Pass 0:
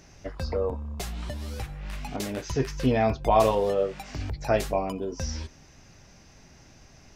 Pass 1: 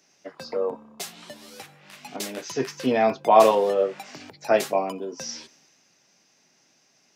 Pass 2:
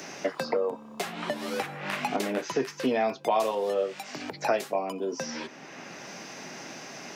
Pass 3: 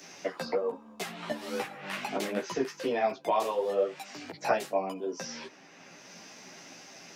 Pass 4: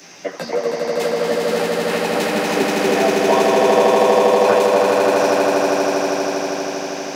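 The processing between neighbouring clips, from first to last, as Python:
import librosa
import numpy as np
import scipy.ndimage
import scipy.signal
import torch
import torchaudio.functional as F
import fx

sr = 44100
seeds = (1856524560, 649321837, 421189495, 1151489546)

y1 = scipy.signal.sosfilt(scipy.signal.bessel(6, 270.0, 'highpass', norm='mag', fs=sr, output='sos'), x)
y1 = fx.band_widen(y1, sr, depth_pct=40)
y1 = F.gain(torch.from_numpy(y1), 3.0).numpy()
y2 = fx.low_shelf(y1, sr, hz=66.0, db=-10.0)
y2 = fx.band_squash(y2, sr, depth_pct=100)
y2 = F.gain(torch.from_numpy(y2), -4.0).numpy()
y3 = fx.chorus_voices(y2, sr, voices=6, hz=0.93, base_ms=14, depth_ms=4.0, mix_pct=45)
y3 = fx.band_widen(y3, sr, depth_pct=40)
y4 = fx.echo_swell(y3, sr, ms=80, loudest=8, wet_db=-3.5)
y4 = F.gain(torch.from_numpy(y4), 7.5).numpy()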